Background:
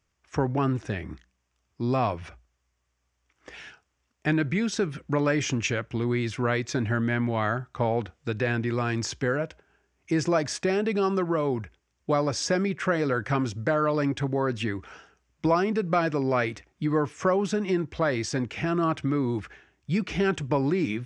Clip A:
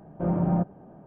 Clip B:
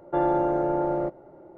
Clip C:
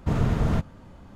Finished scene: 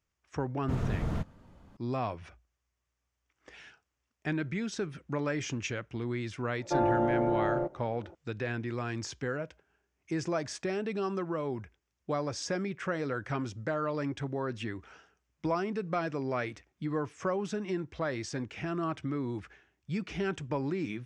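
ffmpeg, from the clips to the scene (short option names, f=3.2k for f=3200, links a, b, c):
-filter_complex "[0:a]volume=-8dB[a];[3:a]atrim=end=1.15,asetpts=PTS-STARTPTS,volume=-9dB,afade=t=in:d=0.004:c=hsin,afade=t=out:st=1.146:d=0.004:c=hsin,adelay=620[b];[2:a]atrim=end=1.57,asetpts=PTS-STARTPTS,volume=-4dB,afade=t=in:d=0.004:c=hsin,afade=t=out:st=1.566:d=0.004:c=hsin,adelay=290178S[c];[a][b][c]amix=inputs=3:normalize=0"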